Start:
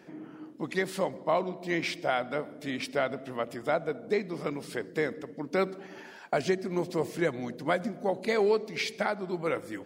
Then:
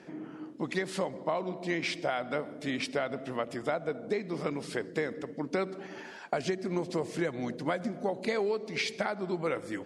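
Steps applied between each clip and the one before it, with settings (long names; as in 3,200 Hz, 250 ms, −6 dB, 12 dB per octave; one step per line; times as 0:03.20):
low-pass filter 10,000 Hz 24 dB per octave
downward compressor, threshold −29 dBFS, peak gain reduction 8.5 dB
level +2 dB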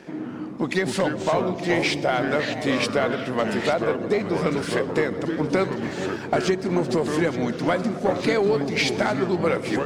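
delay that swaps between a low-pass and a high-pass 435 ms, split 1,000 Hz, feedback 70%, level −11.5 dB
leveller curve on the samples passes 1
delay with pitch and tempo change per echo 90 ms, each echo −4 semitones, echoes 2, each echo −6 dB
level +5.5 dB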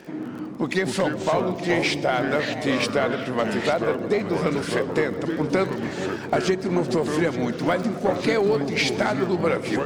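surface crackle 25 per second −33 dBFS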